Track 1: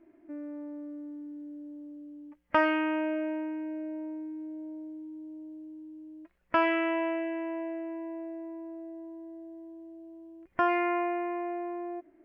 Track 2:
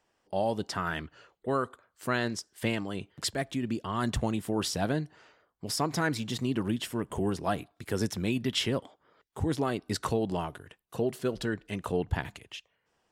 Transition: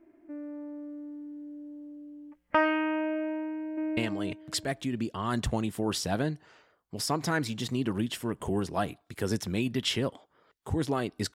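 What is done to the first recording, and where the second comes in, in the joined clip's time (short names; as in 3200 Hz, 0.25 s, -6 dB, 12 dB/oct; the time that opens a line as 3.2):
track 1
3.42–3.97 echo throw 0.35 s, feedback 20%, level 0 dB
3.97 switch to track 2 from 2.67 s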